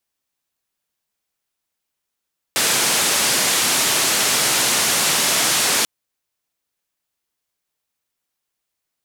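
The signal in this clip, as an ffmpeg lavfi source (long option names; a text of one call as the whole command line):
ffmpeg -f lavfi -i "anoisesrc=color=white:duration=3.29:sample_rate=44100:seed=1,highpass=frequency=140,lowpass=frequency=9900,volume=-9.7dB" out.wav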